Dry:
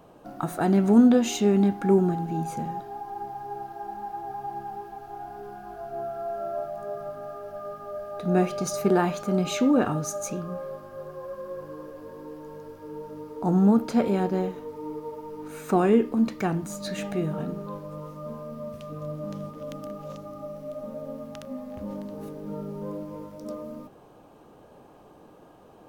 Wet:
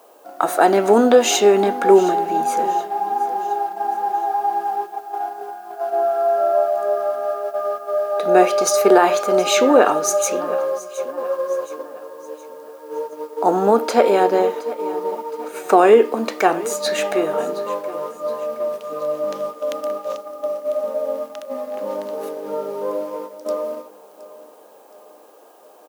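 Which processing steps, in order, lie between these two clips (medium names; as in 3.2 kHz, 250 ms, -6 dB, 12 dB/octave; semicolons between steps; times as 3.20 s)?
gate -38 dBFS, range -9 dB; ladder high-pass 370 Hz, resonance 25%; added noise blue -77 dBFS; on a send: feedback delay 719 ms, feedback 46%, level -18 dB; on the sum: loudness maximiser +19.5 dB; trim -1 dB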